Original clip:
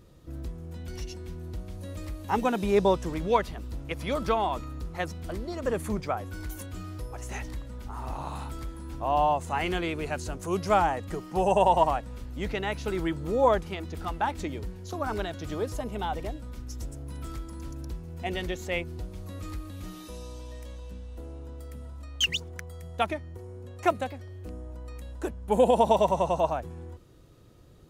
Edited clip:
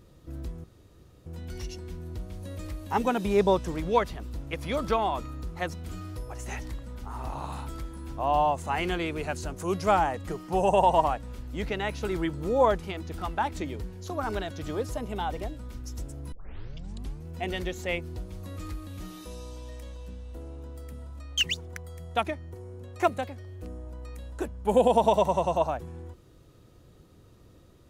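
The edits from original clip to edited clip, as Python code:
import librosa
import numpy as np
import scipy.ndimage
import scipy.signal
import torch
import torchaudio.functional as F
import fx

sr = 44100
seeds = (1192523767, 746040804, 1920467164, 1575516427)

y = fx.edit(x, sr, fx.insert_room_tone(at_s=0.64, length_s=0.62),
    fx.cut(start_s=5.27, length_s=1.45),
    fx.tape_start(start_s=17.15, length_s=0.93), tone=tone)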